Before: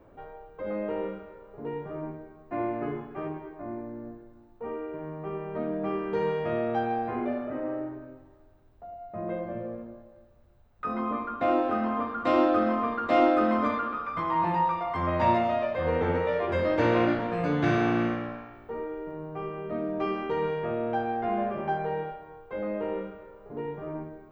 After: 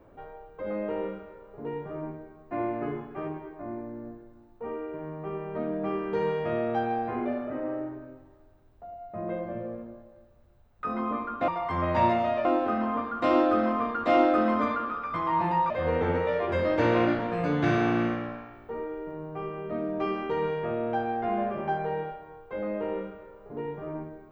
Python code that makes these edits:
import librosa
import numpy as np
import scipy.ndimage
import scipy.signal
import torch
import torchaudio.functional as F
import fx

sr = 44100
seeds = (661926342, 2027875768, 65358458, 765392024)

y = fx.edit(x, sr, fx.move(start_s=14.73, length_s=0.97, to_s=11.48), tone=tone)